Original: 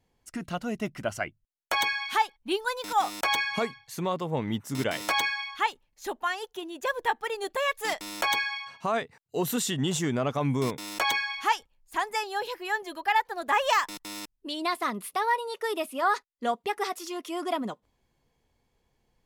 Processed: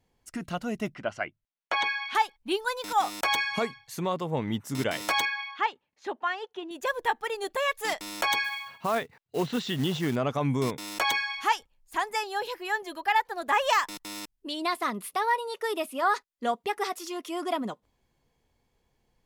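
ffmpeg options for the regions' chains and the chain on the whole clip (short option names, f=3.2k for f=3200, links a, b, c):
-filter_complex "[0:a]asettb=1/sr,asplit=3[a][b][c];[a]atrim=end=0.944[d];[b]atrim=start=0.94:end=2.15,asetpts=PTS-STARTPTS,afade=t=in:d=0.004:c=qsin,afade=t=out:st=1.206:d=0.004:c=qsin,lowpass=3.7k,lowshelf=f=150:g=-11.5[e];[c]atrim=start=2.146[f];[d][e]acrossfade=d=0.004:c1=hsin:c2=qsin[g];[g][f]acrossfade=d=0.004:c1=qsin:c2=hsin,asettb=1/sr,asplit=3[h][i][j];[h]atrim=end=5.254[k];[i]atrim=start=5.25:end=6.71,asetpts=PTS-STARTPTS,afade=t=in:d=0.004:c=qsin,afade=t=out:st=1.456:d=0.004:c=qsin,volume=17dB,asoftclip=hard,volume=-17dB,highpass=170,lowpass=3.3k[l];[j]atrim=start=6.706[m];[k][l]acrossfade=d=0.004:c1=hsin:c2=qsin[n];[n][m]acrossfade=d=0.004:c1=qsin:c2=hsin,asettb=1/sr,asplit=3[o][p][q];[o]atrim=end=8.444[r];[p]atrim=start=8.44:end=10.16,asetpts=PTS-STARTPTS,afade=t=in:d=0.004:c=qsin,afade=t=out:st=1.716:d=0.004:c=qsin,lowpass=f=4.4k:w=0.5412,lowpass=f=4.4k:w=1.3066,acrusher=bits=4:mode=log:mix=0:aa=0.000001[s];[q]atrim=start=10.156[t];[r][s]acrossfade=d=0.004:c1=hsin:c2=qsin[u];[u][t]acrossfade=d=0.004:c1=qsin:c2=hsin"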